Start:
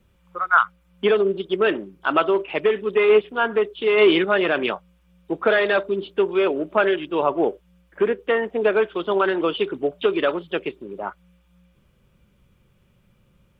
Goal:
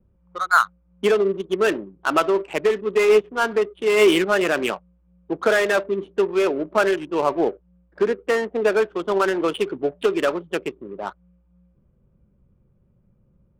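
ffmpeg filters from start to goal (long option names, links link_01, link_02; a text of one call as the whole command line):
ffmpeg -i in.wav -af "adynamicsmooth=sensitivity=3.5:basefreq=700" out.wav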